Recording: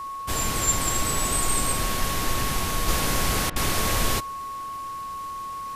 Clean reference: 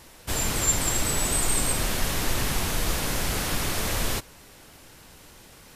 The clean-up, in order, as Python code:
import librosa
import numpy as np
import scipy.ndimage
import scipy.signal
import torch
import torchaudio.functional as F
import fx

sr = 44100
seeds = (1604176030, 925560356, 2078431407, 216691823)

y = fx.fix_declick_ar(x, sr, threshold=6.5)
y = fx.notch(y, sr, hz=1100.0, q=30.0)
y = fx.fix_interpolate(y, sr, at_s=(3.5,), length_ms=59.0)
y = fx.gain(y, sr, db=fx.steps((0.0, 0.0), (2.88, -3.0)))